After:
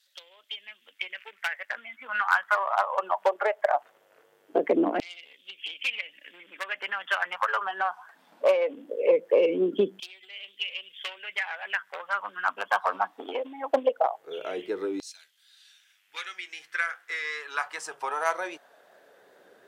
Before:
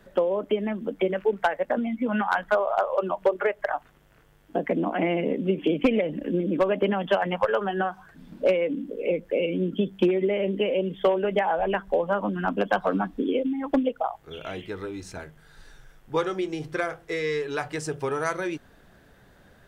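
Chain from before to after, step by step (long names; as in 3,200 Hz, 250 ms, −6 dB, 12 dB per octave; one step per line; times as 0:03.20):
pitch vibrato 2.6 Hz 30 cents
harmonic generator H 4 −18 dB, 6 −24 dB, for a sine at −12.5 dBFS
auto-filter high-pass saw down 0.2 Hz 320–4,300 Hz
level −2 dB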